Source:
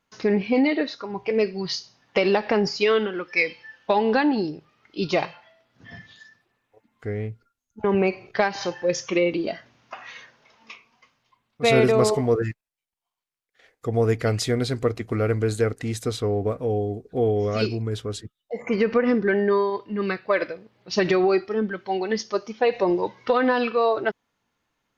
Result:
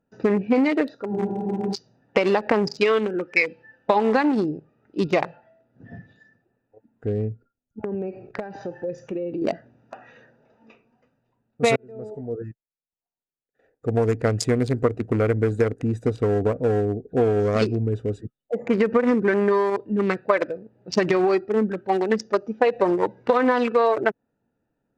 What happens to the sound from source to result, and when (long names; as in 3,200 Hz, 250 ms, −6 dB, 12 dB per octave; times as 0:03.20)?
0:01.14: frozen spectrum 0.58 s
0:07.28–0:09.42: downward compressor 5 to 1, threshold −30 dBFS
0:11.76–0:14.66: fade in
whole clip: adaptive Wiener filter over 41 samples; downward compressor, threshold −23 dBFS; octave-band graphic EQ 125/250/500/1,000/2,000/8,000 Hz +4/+5/+5/+8/+6/+12 dB